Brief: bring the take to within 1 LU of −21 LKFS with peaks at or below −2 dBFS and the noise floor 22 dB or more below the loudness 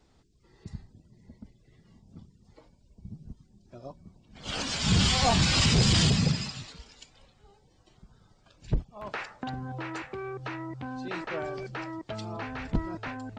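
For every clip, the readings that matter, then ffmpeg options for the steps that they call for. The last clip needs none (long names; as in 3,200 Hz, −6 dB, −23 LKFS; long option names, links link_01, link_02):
integrated loudness −28.5 LKFS; sample peak −13.5 dBFS; target loudness −21.0 LKFS
→ -af "volume=7.5dB"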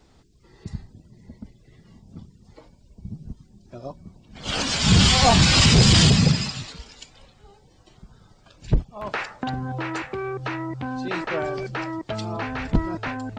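integrated loudness −21.0 LKFS; sample peak −6.0 dBFS; background noise floor −56 dBFS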